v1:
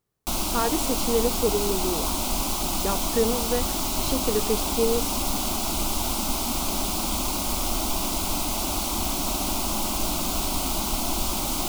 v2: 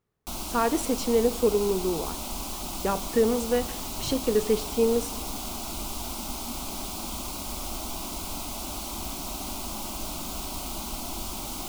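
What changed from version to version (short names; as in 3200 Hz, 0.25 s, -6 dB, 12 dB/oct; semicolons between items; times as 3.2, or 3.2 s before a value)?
background -11.0 dB; reverb: on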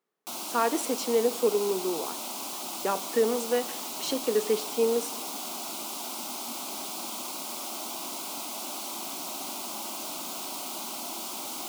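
master: add Bessel high-pass 330 Hz, order 8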